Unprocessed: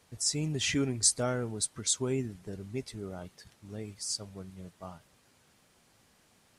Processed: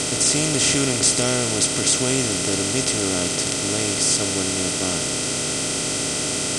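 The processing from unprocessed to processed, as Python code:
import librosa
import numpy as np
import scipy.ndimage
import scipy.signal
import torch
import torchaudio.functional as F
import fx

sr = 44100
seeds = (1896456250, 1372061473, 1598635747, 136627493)

y = fx.bin_compress(x, sr, power=0.2)
y = F.gain(torch.from_numpy(y), 3.5).numpy()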